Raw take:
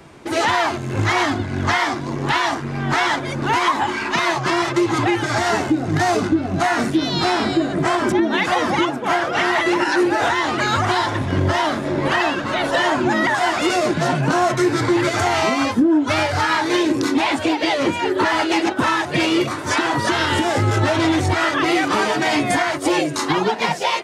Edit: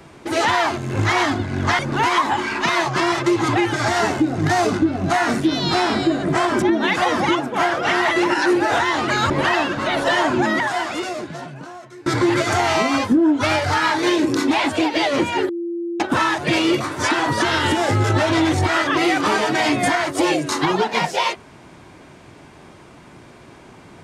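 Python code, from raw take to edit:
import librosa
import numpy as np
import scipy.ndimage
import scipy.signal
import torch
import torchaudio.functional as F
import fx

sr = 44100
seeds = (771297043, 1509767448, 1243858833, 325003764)

y = fx.edit(x, sr, fx.cut(start_s=1.79, length_s=1.5),
    fx.cut(start_s=10.8, length_s=1.17),
    fx.fade_out_to(start_s=13.07, length_s=1.66, curve='qua', floor_db=-23.5),
    fx.bleep(start_s=18.16, length_s=0.51, hz=342.0, db=-22.5), tone=tone)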